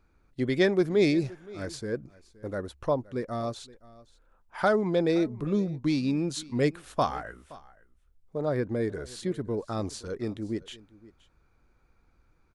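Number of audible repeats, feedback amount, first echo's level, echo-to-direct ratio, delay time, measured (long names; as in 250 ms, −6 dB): 1, repeats not evenly spaced, −21.0 dB, −21.0 dB, 521 ms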